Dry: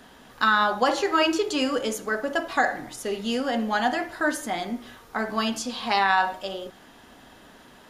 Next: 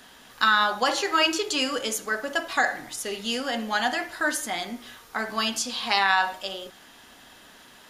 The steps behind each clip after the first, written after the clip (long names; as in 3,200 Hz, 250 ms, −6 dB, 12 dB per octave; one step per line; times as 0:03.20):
tilt shelving filter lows −5.5 dB, about 1,300 Hz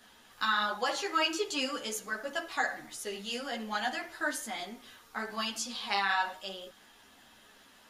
string-ensemble chorus
level −5 dB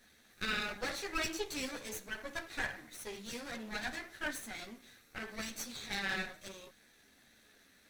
lower of the sound and its delayed copy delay 0.49 ms
level −4.5 dB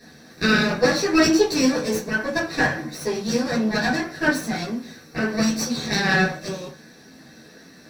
convolution reverb RT60 0.20 s, pre-delay 3 ms, DRR −3.5 dB
level +5.5 dB